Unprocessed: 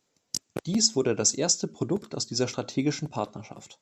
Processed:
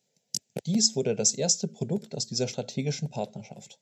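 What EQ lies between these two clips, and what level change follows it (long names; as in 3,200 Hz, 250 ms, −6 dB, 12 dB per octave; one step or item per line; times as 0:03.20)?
high-pass filter 82 Hz
low-shelf EQ 120 Hz +9 dB
phaser with its sweep stopped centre 310 Hz, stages 6
0.0 dB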